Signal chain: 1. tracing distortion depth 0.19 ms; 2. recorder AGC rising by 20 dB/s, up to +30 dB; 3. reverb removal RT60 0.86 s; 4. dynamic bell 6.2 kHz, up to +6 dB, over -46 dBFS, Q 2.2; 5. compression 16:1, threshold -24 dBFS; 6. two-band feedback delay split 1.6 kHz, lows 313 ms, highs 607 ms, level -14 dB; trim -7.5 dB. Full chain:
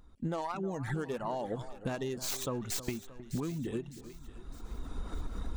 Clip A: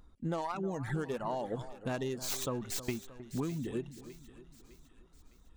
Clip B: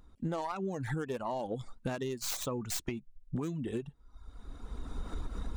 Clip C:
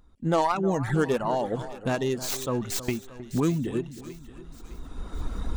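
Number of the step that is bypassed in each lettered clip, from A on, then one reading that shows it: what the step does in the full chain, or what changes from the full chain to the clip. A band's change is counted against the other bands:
2, momentary loudness spread change +2 LU; 6, echo-to-direct -12.5 dB to none; 5, mean gain reduction 5.5 dB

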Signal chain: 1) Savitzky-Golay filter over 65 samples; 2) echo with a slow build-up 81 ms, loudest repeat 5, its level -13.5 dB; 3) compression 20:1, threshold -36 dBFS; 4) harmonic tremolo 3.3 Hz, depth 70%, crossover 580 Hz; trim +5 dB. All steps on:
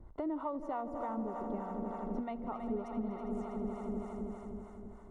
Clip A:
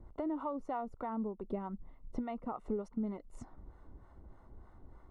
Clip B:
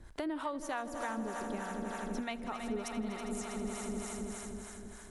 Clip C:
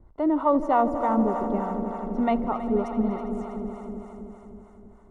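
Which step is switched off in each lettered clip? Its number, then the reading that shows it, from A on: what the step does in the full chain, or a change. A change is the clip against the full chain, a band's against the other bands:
2, momentary loudness spread change +15 LU; 1, 2 kHz band +14.5 dB; 3, mean gain reduction 8.5 dB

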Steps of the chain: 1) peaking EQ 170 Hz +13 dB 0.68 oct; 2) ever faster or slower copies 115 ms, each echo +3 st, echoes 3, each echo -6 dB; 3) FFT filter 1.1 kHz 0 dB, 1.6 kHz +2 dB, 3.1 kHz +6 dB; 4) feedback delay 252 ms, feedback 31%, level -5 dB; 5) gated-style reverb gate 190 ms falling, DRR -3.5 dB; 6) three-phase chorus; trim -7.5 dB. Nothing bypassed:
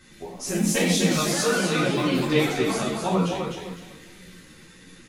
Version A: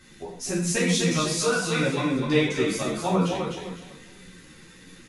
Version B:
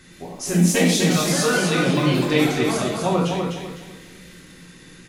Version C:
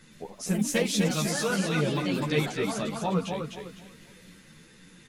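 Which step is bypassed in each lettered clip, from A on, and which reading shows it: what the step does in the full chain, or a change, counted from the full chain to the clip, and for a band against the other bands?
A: 2, momentary loudness spread change -1 LU; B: 6, 125 Hz band +3.0 dB; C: 5, momentary loudness spread change -1 LU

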